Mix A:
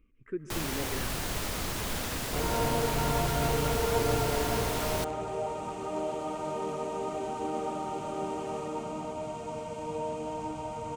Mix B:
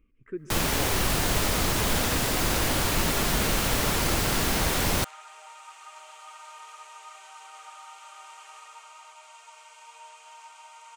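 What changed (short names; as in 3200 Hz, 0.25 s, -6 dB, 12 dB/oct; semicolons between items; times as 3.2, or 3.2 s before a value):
first sound +8.5 dB; second sound: add HPF 1200 Hz 24 dB/oct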